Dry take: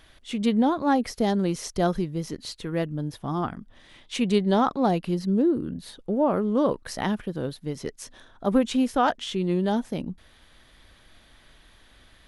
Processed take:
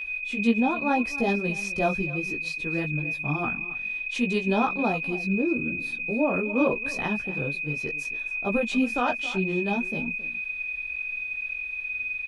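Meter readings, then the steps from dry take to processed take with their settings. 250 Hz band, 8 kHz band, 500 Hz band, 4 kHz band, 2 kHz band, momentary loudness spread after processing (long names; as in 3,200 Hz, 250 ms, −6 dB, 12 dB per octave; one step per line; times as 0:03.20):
−3.0 dB, −5.5 dB, −2.5 dB, −3.5 dB, +13.5 dB, 6 LU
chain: high-shelf EQ 9,400 Hz −7.5 dB
single-tap delay 270 ms −16.5 dB
steady tone 2,500 Hz −27 dBFS
multi-voice chorus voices 6, 0.63 Hz, delay 17 ms, depth 4.6 ms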